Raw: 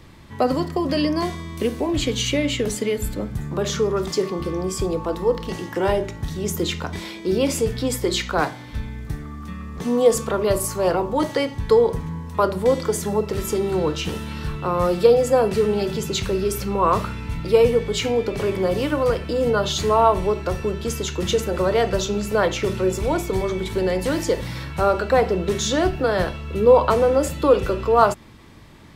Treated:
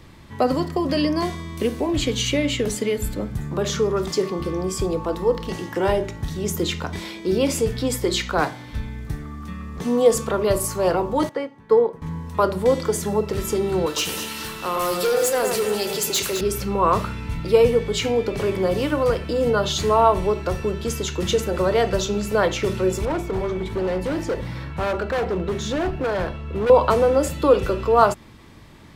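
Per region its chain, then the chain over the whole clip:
0:11.29–0:12.02: three-way crossover with the lows and the highs turned down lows −23 dB, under 160 Hz, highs −13 dB, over 2,200 Hz + expander for the loud parts, over −34 dBFS
0:13.86–0:16.41: RIAA equalisation recording + hard clipping −18 dBFS + delay that swaps between a low-pass and a high-pass 105 ms, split 2,400 Hz, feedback 62%, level −5 dB
0:23.05–0:26.70: high-shelf EQ 3,300 Hz −12 dB + gain into a clipping stage and back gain 20 dB
whole clip: no processing

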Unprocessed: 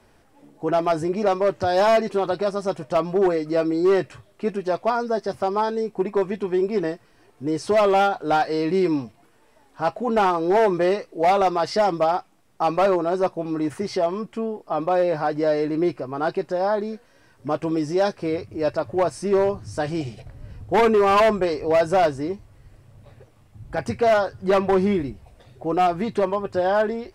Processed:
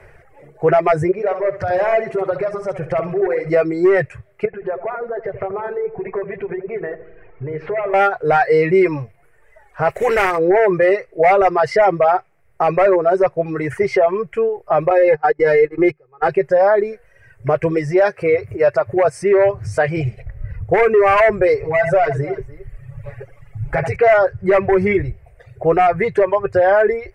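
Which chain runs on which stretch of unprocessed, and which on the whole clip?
0:01.11–0:03.50: high-shelf EQ 5,000 Hz −5.5 dB + downward compressor 5 to 1, threshold −28 dBFS + flutter between parallel walls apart 11.5 metres, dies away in 0.79 s
0:04.45–0:07.94: low-pass filter 2,800 Hz 24 dB per octave + downward compressor 10 to 1, threshold −31 dBFS + feedback echo with a low-pass in the loop 83 ms, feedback 67%, low-pass 1,700 Hz, level −5 dB
0:09.89–0:10.37: compressing power law on the bin magnitudes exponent 0.61 + downward compressor 2 to 1, threshold −22 dBFS
0:14.90–0:16.28: noise gate −24 dBFS, range −25 dB + comb filter 2.4 ms, depth 87%
0:18.01–0:19.97: high-pass filter 200 Hz 6 dB per octave + upward compression, threshold −28 dBFS
0:21.56–0:23.96: comb filter 7.1 ms, depth 85% + multi-tap delay 76/82/295 ms −9.5/−13/−17 dB + downward compressor 2.5 to 1, threshold −27 dBFS
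whole clip: reverb reduction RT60 1.4 s; drawn EQ curve 150 Hz 0 dB, 260 Hz −24 dB, 390 Hz −1 dB, 580 Hz 0 dB, 970 Hz −8 dB, 2,100 Hz +5 dB, 3,500 Hz −18 dB, 8,700 Hz −13 dB; boost into a limiter +19 dB; level −5 dB

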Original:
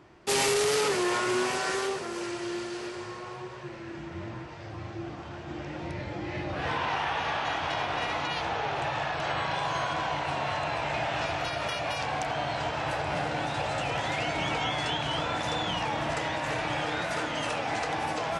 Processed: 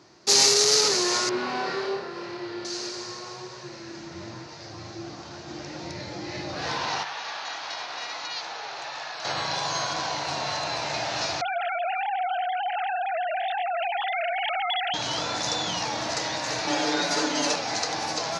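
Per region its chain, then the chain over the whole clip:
0:01.29–0:02.65: high-frequency loss of the air 410 metres + flutter between parallel walls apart 4.8 metres, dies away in 0.45 s
0:07.03–0:09.25: high-pass filter 1,400 Hz 6 dB per octave + high-shelf EQ 4,200 Hz −10.5 dB
0:11.41–0:14.94: three sine waves on the formant tracks + envelope flattener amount 70%
0:16.67–0:17.56: high-pass filter 220 Hz 24 dB per octave + low-shelf EQ 340 Hz +11.5 dB + comb filter 6.9 ms, depth 73%
whole clip: high-pass filter 110 Hz 12 dB per octave; flat-topped bell 5,200 Hz +14.5 dB 1 octave; mains-hum notches 50/100/150 Hz

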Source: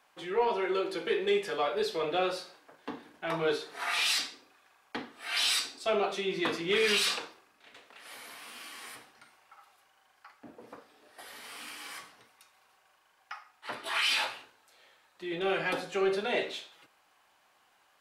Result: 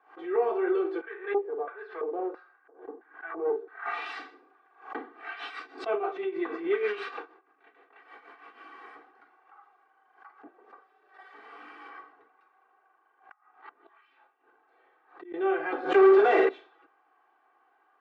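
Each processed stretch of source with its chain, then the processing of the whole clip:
0:01.01–0:03.86: auto-filter band-pass square 1.5 Hz 440–1,600 Hz + highs frequency-modulated by the lows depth 0.32 ms
0:05.13–0:08.61: parametric band 2,100 Hz +3 dB 1.1 octaves + amplitude tremolo 6.3 Hz, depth 72%
0:10.48–0:11.34: high-pass filter 1,300 Hz 6 dB per octave + comb filter 5.2 ms, depth 53%
0:11.89–0:15.34: low-pass filter 3,200 Hz 6 dB per octave + gate with flip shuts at −34 dBFS, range −28 dB
0:15.94–0:16.49: high-pass filter 270 Hz + mains-hum notches 60/120/180/240/300/360/420/480/540 Hz + leveller curve on the samples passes 5
whole clip: Chebyshev band-pass filter 300–1,400 Hz, order 2; comb filter 2.6 ms, depth 79%; background raised ahead of every attack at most 140 dB per second

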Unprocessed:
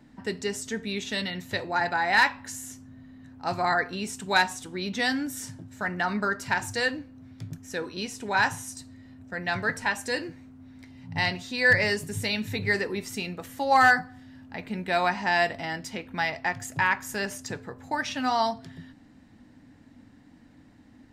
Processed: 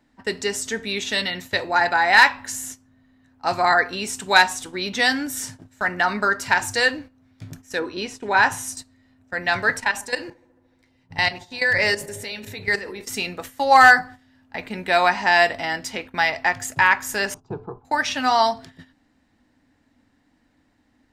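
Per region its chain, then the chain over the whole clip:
0:07.79–0:08.52: low-pass filter 2,800 Hz 6 dB per octave + parametric band 340 Hz +5 dB 0.43 octaves
0:09.80–0:13.09: output level in coarse steps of 13 dB + delay with a low-pass on its return 74 ms, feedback 78%, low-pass 610 Hz, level −13 dB
0:17.34–0:17.85: low-pass filter 1,300 Hz + low-shelf EQ 450 Hz +8 dB + phaser with its sweep stopped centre 370 Hz, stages 8
whole clip: noise gate −41 dBFS, range −12 dB; parametric band 150 Hz −9.5 dB 2.1 octaves; level +8 dB

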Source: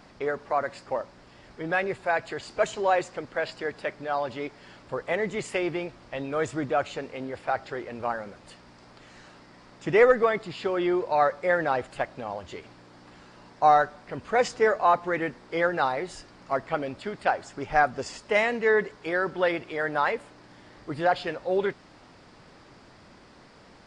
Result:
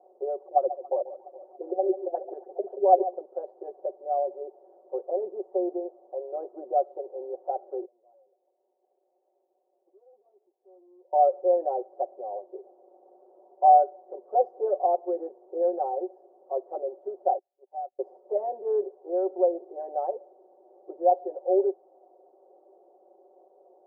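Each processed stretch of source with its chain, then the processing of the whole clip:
0:00.39–0:03.14: auto-filter low-pass sine 5.7 Hz 200–2,700 Hz + delay that swaps between a low-pass and a high-pass 140 ms, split 910 Hz, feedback 70%, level −12.5 dB
0:07.85–0:11.13: tube saturation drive 36 dB, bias 0.35 + downward compressor 16 to 1, threshold −48 dBFS + downward expander −44 dBFS
0:17.38–0:17.99: parametric band 350 Hz −7 dB 0.85 octaves + downward compressor 2 to 1, threshold −43 dBFS + noise gate −41 dBFS, range −31 dB
whole clip: elliptic band-pass filter 370–760 Hz, stop band 60 dB; comb filter 5.4 ms, depth 99%; level −2 dB

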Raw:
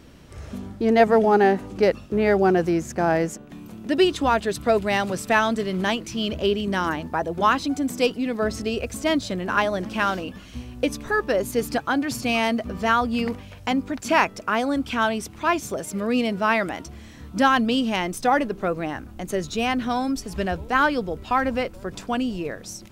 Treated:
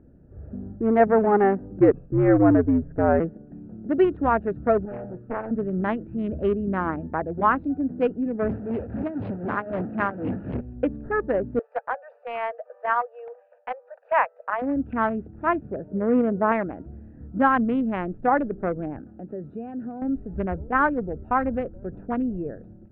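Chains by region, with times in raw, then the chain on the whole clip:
0:01.80–0:03.20: dynamic equaliser 460 Hz, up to +5 dB, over −29 dBFS, Q 1.1 + frequency shifter −77 Hz
0:04.85–0:05.51: tuned comb filter 120 Hz, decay 0.41 s, mix 70% + highs frequency-modulated by the lows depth 0.66 ms
0:08.49–0:10.61: linear delta modulator 32 kbit/s, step −17 dBFS + high-pass filter 79 Hz 24 dB per octave + amplitude tremolo 3.9 Hz, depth 71%
0:11.59–0:14.62: Butterworth high-pass 480 Hz 96 dB per octave + notch filter 1,400 Hz, Q 18
0:15.88–0:16.52: low-pass filter 1,200 Hz 6 dB per octave + parametric band 500 Hz +6 dB 1.5 octaves
0:18.99–0:20.02: high-pass filter 140 Hz + downward compressor 2 to 1, threshold −32 dBFS + one half of a high-frequency compander encoder only
whole clip: adaptive Wiener filter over 41 samples; low-pass filter 1,800 Hz 24 dB per octave; automatic gain control gain up to 4 dB; level −3.5 dB

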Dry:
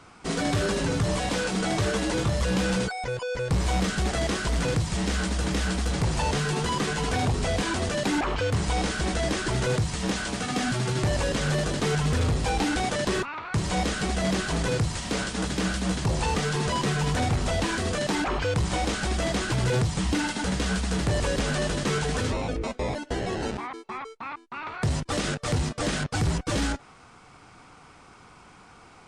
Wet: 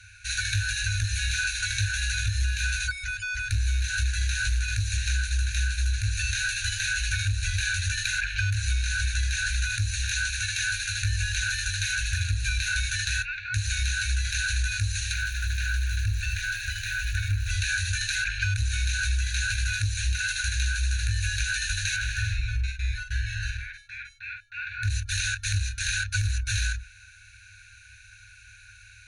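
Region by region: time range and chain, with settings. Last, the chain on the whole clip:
0:15.12–0:17.49: high-shelf EQ 3,200 Hz −10.5 dB + surface crackle 530 per second −37 dBFS
0:21.96–0:24.90: hard clipping −22.5 dBFS + high-shelf EQ 4,500 Hz −10.5 dB + double-tracking delay 46 ms −5 dB
whole clip: brick-wall band-stop 110–1,400 Hz; EQ curve with evenly spaced ripples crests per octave 1.5, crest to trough 15 dB; downward compressor, threshold −25 dBFS; level +2.5 dB

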